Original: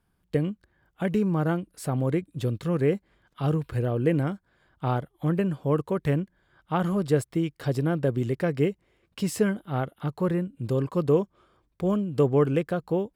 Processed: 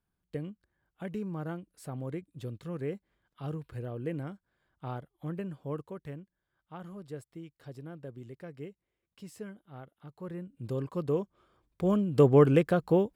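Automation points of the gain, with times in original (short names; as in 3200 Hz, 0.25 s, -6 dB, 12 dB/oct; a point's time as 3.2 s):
5.72 s -12 dB
6.21 s -19 dB
10.09 s -19 dB
10.65 s -8 dB
11.16 s -8 dB
12.3 s +1.5 dB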